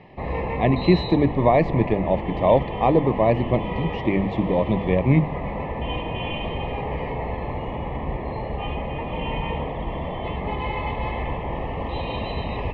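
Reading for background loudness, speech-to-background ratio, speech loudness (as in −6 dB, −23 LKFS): −29.0 LKFS, 7.5 dB, −21.5 LKFS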